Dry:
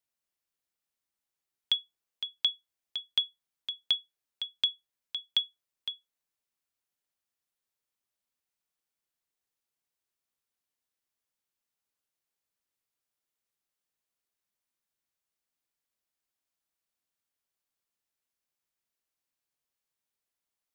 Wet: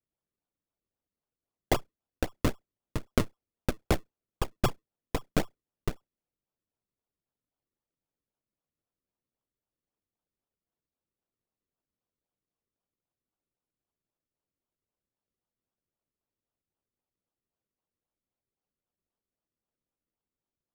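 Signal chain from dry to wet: Chebyshev shaper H 3 -20 dB, 7 -29 dB, 8 -6 dB, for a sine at -15.5 dBFS; decimation with a swept rate 39×, swing 100% 3.8 Hz

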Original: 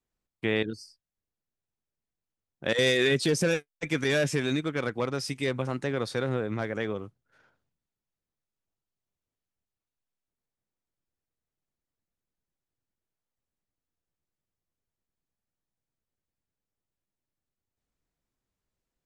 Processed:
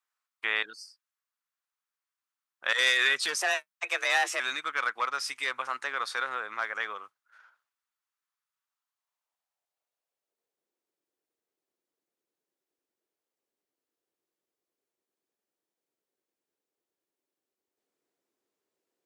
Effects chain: 3.41–4.40 s: frequency shift +190 Hz; high-pass sweep 1.2 kHz -> 370 Hz, 8.74–10.70 s; trim +1 dB

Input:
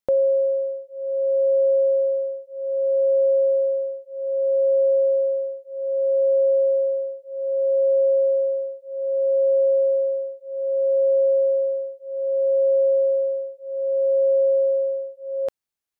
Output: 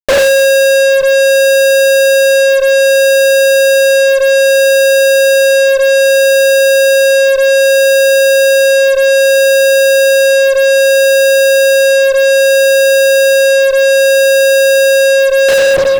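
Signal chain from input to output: simulated room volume 220 m³, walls mixed, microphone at 6 m; fuzz box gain 38 dB, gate -44 dBFS; trim +6 dB

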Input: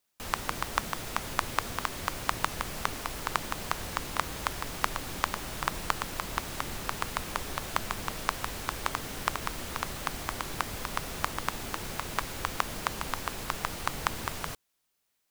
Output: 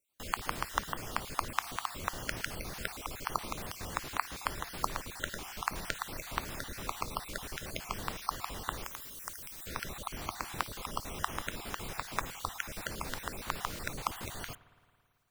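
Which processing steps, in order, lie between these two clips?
random holes in the spectrogram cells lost 36%; 8.84–9.67 s: pre-emphasis filter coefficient 0.8; spring tank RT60 2.1 s, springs 54 ms, chirp 80 ms, DRR 17.5 dB; trim -2.5 dB

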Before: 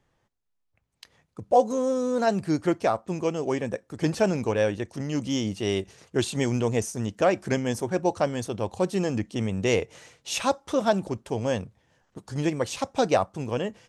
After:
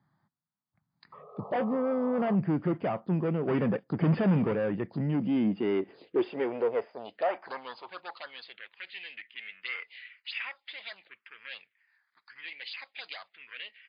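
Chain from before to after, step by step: dynamic bell 2 kHz, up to +6 dB, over -50 dBFS, Q 4.5; 3.48–4.53 s: waveshaping leveller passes 2; saturation -26 dBFS, distortion -7 dB; high-pass sweep 160 Hz -> 2.1 kHz, 5.05–8.77 s; 1.12–2.36 s: painted sound noise 400–1300 Hz -42 dBFS; touch-sensitive phaser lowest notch 460 Hz, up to 4.1 kHz, full sweep at -29 dBFS; 11.02–11.45 s: distance through air 97 m; MP3 40 kbps 11.025 kHz

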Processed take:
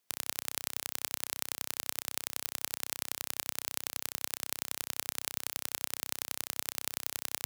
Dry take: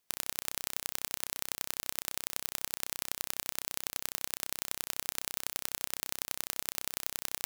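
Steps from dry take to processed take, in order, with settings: high-pass 83 Hz 12 dB/octave

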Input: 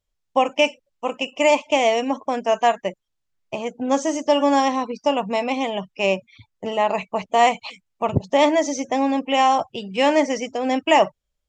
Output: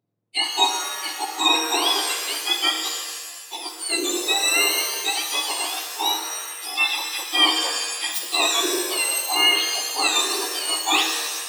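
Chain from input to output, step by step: spectrum inverted on a logarithmic axis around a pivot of 1.5 kHz; pitch-shifted reverb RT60 1.4 s, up +7 st, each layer -2 dB, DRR 5 dB

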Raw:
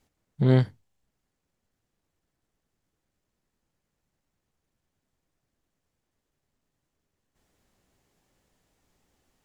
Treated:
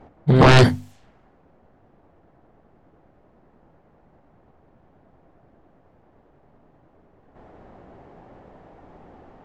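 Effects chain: peak limiter -17 dBFS, peak gain reduction 8 dB; bass shelf 120 Hz -7 dB; hum notches 50/100/150/200/250 Hz; level-controlled noise filter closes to 1 kHz, open at -38 dBFS; peaking EQ 710 Hz +4 dB 0.57 oct; pre-echo 123 ms -13 dB; sine folder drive 15 dB, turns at -15.5 dBFS; trim +8.5 dB

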